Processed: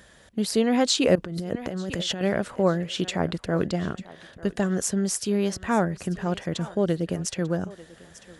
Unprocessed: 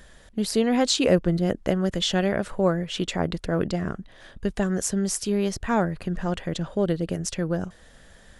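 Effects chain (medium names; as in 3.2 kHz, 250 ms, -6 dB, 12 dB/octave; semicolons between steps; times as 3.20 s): thinning echo 893 ms, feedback 27%, high-pass 370 Hz, level -17.5 dB; 1.15–2.21 s: compressor with a negative ratio -30 dBFS, ratio -1; high-pass 76 Hz 12 dB/octave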